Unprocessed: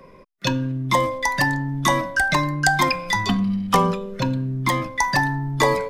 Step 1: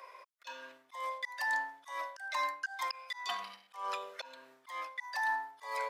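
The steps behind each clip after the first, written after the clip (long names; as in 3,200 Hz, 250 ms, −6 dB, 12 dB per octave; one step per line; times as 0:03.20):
high-pass filter 710 Hz 24 dB per octave
reversed playback
downward compressor 12 to 1, threshold −28 dBFS, peak gain reduction 15.5 dB
reversed playback
volume swells 305 ms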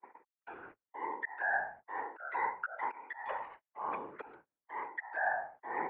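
noise gate −51 dBFS, range −35 dB
single-sideband voice off tune −120 Hz 270–2,200 Hz
random phases in short frames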